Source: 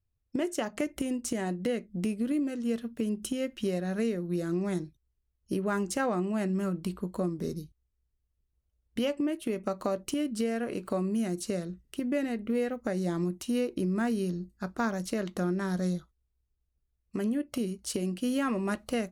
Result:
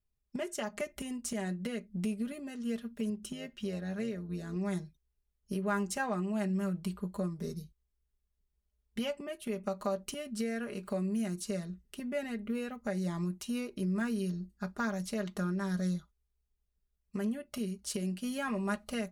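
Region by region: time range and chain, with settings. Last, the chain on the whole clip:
3.1–4.56 bell 11000 Hz -6 dB 0.64 oct + AM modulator 100 Hz, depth 35%
whole clip: dynamic EQ 320 Hz, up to -7 dB, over -44 dBFS, Q 1.4; comb 4.9 ms, depth 75%; gain -4.5 dB

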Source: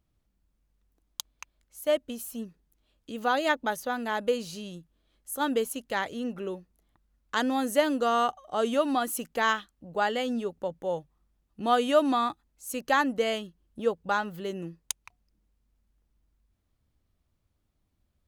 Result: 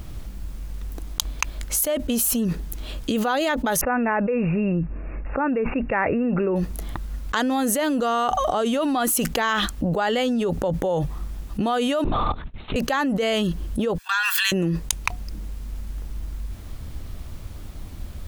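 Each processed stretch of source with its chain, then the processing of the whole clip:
3.81–6.56 brick-wall FIR low-pass 2800 Hz + mismatched tape noise reduction decoder only
12.04–12.76 level quantiser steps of 18 dB + LPC vocoder at 8 kHz whisper
13.98–14.52 steep high-pass 1200 Hz 48 dB/oct + frequency shift -30 Hz + comb 1.2 ms, depth 79%
whole clip: low shelf 64 Hz +8.5 dB; fast leveller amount 100%; gain -5 dB

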